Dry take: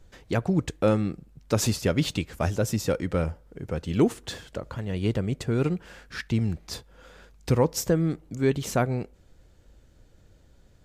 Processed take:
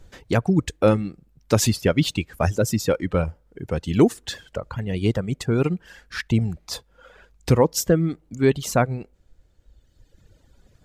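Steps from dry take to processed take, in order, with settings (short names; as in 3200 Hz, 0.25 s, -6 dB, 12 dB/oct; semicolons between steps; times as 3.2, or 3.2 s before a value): reverb removal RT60 1.8 s; gain +5.5 dB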